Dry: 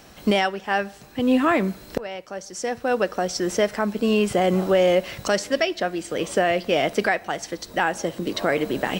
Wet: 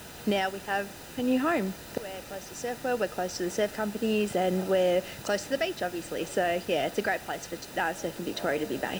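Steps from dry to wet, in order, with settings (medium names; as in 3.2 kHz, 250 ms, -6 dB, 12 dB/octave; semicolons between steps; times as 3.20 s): added noise pink -36 dBFS; comb of notches 1.1 kHz; trim -6.5 dB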